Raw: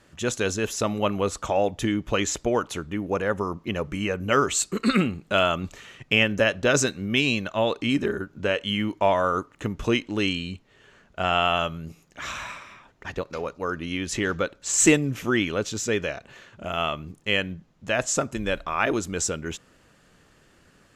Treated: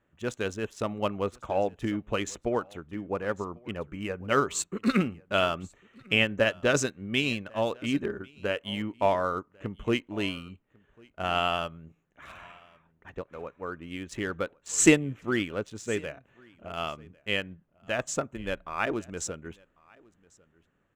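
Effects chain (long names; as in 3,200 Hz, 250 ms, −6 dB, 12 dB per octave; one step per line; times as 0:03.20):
adaptive Wiener filter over 9 samples
single-tap delay 1,097 ms −19 dB
expander for the loud parts 1.5 to 1, over −41 dBFS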